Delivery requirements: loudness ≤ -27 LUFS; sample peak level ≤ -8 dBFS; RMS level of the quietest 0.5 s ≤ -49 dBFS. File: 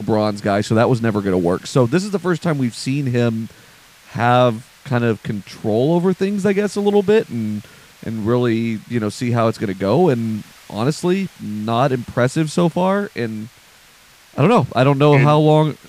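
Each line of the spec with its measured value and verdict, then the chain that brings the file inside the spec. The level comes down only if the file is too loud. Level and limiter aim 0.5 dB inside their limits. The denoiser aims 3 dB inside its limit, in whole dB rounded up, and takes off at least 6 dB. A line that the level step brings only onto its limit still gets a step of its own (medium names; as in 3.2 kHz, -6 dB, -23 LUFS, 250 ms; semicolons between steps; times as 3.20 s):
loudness -18.0 LUFS: fail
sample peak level -3.5 dBFS: fail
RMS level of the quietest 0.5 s -48 dBFS: fail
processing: trim -9.5 dB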